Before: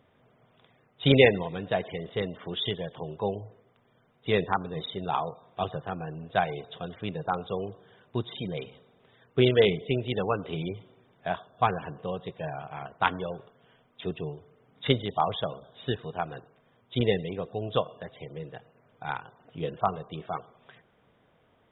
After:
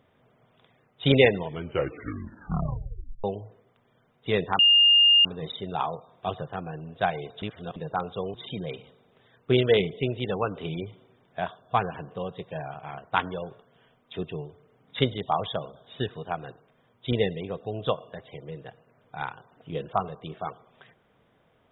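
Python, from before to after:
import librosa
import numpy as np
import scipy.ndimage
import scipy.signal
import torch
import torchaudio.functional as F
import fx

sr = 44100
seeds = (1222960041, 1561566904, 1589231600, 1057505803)

y = fx.edit(x, sr, fx.tape_stop(start_s=1.38, length_s=1.86),
    fx.insert_tone(at_s=4.59, length_s=0.66, hz=2820.0, db=-14.0),
    fx.reverse_span(start_s=6.76, length_s=0.34),
    fx.cut(start_s=7.68, length_s=0.54), tone=tone)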